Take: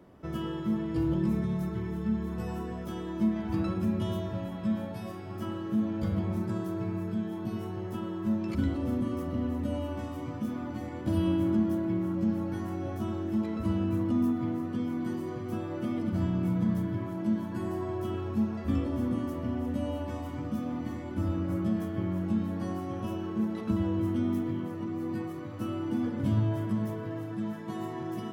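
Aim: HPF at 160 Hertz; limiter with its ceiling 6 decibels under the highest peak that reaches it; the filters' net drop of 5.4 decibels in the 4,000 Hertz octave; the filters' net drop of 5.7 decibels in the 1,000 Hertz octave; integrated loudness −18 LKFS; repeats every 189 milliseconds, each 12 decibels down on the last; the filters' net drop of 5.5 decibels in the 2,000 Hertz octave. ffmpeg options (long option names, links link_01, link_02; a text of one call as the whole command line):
ffmpeg -i in.wav -af "highpass=160,equalizer=frequency=1000:width_type=o:gain=-6.5,equalizer=frequency=2000:width_type=o:gain=-3.5,equalizer=frequency=4000:width_type=o:gain=-5.5,alimiter=level_in=0.5dB:limit=-24dB:level=0:latency=1,volume=-0.5dB,aecho=1:1:189|378|567:0.251|0.0628|0.0157,volume=16.5dB" out.wav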